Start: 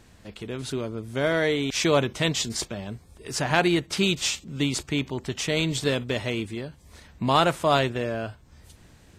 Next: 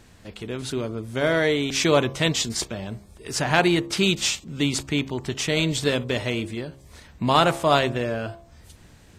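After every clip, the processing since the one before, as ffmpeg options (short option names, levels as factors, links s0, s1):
-af "bandreject=f=67.82:t=h:w=4,bandreject=f=135.64:t=h:w=4,bandreject=f=203.46:t=h:w=4,bandreject=f=271.28:t=h:w=4,bandreject=f=339.1:t=h:w=4,bandreject=f=406.92:t=h:w=4,bandreject=f=474.74:t=h:w=4,bandreject=f=542.56:t=h:w=4,bandreject=f=610.38:t=h:w=4,bandreject=f=678.2:t=h:w=4,bandreject=f=746.02:t=h:w=4,bandreject=f=813.84:t=h:w=4,bandreject=f=881.66:t=h:w=4,bandreject=f=949.48:t=h:w=4,bandreject=f=1017.3:t=h:w=4,bandreject=f=1085.12:t=h:w=4,bandreject=f=1152.94:t=h:w=4,bandreject=f=1220.76:t=h:w=4,volume=1.33"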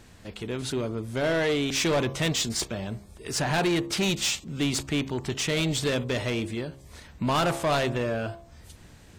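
-af "asoftclip=type=tanh:threshold=0.1"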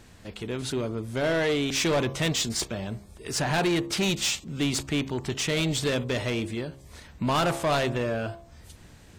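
-af anull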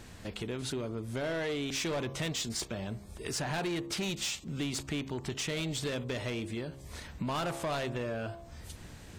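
-af "acompressor=threshold=0.0126:ratio=3,volume=1.26"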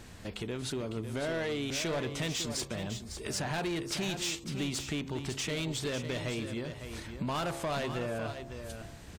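-af "aecho=1:1:553:0.355"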